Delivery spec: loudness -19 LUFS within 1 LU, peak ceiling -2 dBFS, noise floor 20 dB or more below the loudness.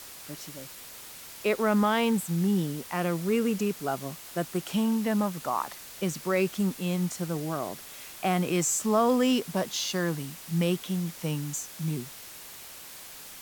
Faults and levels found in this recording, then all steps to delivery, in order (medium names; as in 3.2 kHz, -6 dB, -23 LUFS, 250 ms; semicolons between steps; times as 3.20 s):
noise floor -45 dBFS; noise floor target -49 dBFS; loudness -28.5 LUFS; peak level -12.0 dBFS; loudness target -19.0 LUFS
-> noise reduction 6 dB, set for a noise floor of -45 dBFS; trim +9.5 dB